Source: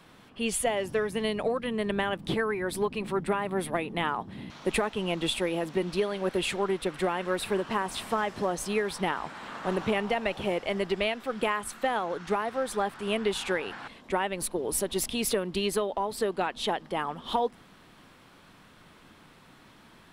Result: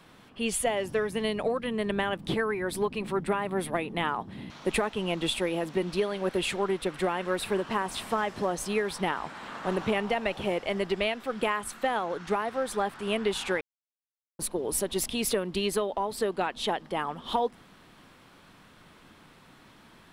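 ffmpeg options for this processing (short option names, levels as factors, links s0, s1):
-filter_complex "[0:a]asplit=3[s0][s1][s2];[s0]atrim=end=13.61,asetpts=PTS-STARTPTS,afade=t=out:st=13.606:d=0.004:c=hsin[s3];[s1]atrim=start=13.61:end=14.39,asetpts=PTS-STARTPTS,volume=0[s4];[s2]atrim=start=14.39,asetpts=PTS-STARTPTS,afade=t=in:d=0.004:c=hsin[s5];[s3][s4][s5]concat=n=3:v=0:a=1"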